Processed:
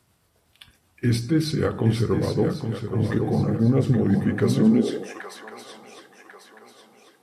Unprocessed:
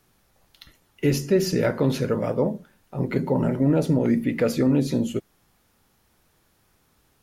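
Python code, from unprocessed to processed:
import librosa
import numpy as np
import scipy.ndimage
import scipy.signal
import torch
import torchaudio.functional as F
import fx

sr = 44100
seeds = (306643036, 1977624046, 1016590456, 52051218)

y = fx.pitch_heads(x, sr, semitones=-3.0)
y = fx.echo_swing(y, sr, ms=1094, ratio=3, feedback_pct=38, wet_db=-7.5)
y = fx.filter_sweep_highpass(y, sr, from_hz=75.0, to_hz=850.0, start_s=4.34, end_s=5.2, q=1.7)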